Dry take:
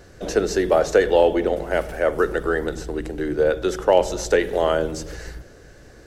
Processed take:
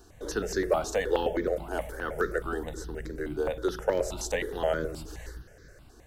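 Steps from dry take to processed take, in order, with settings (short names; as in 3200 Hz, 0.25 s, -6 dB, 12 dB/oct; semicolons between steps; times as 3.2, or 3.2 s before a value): high shelf 7400 Hz +5.5 dB; short-mantissa float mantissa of 6-bit; step phaser 9.5 Hz 550–2800 Hz; gain -5 dB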